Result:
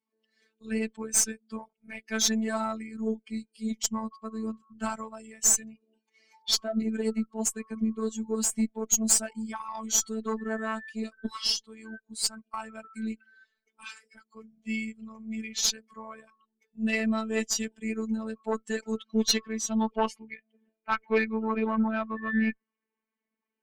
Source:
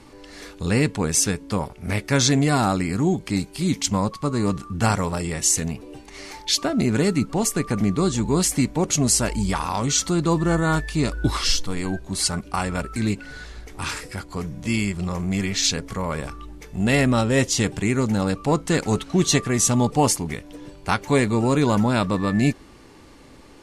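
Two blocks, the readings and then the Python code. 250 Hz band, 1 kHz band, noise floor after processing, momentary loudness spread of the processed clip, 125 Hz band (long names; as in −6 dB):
−8.5 dB, −9.5 dB, below −85 dBFS, 17 LU, below −20 dB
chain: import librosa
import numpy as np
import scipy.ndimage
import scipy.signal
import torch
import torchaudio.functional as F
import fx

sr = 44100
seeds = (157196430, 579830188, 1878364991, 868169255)

y = fx.bin_expand(x, sr, power=2.0)
y = scipy.signal.sosfilt(scipy.signal.butter(4, 170.0, 'highpass', fs=sr, output='sos'), y)
y = fx.filter_sweep_lowpass(y, sr, from_hz=7600.0, to_hz=2100.0, start_s=18.73, end_s=20.48, q=2.4)
y = fx.cheby_harmonics(y, sr, harmonics=(4, 5, 8), levels_db=(-22, -13, -25), full_scale_db=-2.0)
y = fx.robotise(y, sr, hz=221.0)
y = F.gain(torch.from_numpy(y), -7.0).numpy()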